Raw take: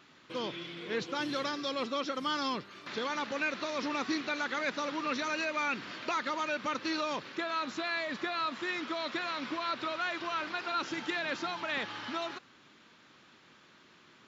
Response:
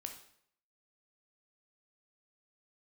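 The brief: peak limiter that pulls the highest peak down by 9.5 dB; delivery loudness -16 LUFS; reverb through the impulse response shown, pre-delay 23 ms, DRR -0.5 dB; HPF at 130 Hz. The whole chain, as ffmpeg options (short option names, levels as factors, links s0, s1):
-filter_complex "[0:a]highpass=130,alimiter=level_in=1.58:limit=0.0631:level=0:latency=1,volume=0.631,asplit=2[s0][s1];[1:a]atrim=start_sample=2205,adelay=23[s2];[s1][s2]afir=irnorm=-1:irlink=0,volume=1.5[s3];[s0][s3]amix=inputs=2:normalize=0,volume=8.41"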